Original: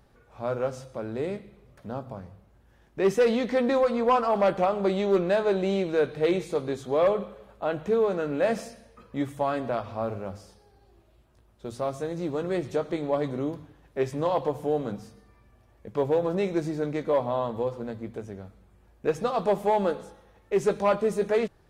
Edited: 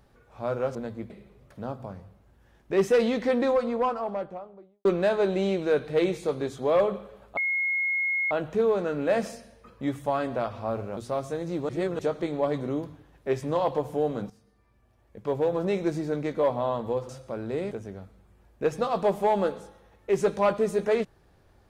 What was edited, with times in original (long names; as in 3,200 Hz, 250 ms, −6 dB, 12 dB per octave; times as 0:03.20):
0:00.75–0:01.37: swap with 0:17.79–0:18.14
0:03.47–0:05.12: fade out and dull
0:07.64: insert tone 2,160 Hz −23.5 dBFS 0.94 s
0:10.30–0:11.67: remove
0:12.39–0:12.69: reverse
0:15.00–0:16.40: fade in, from −13.5 dB